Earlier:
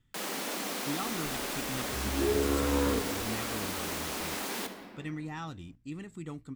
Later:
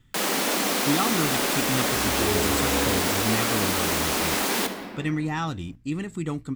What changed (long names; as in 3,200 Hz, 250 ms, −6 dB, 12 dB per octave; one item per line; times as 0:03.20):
speech +11.5 dB
first sound +11.0 dB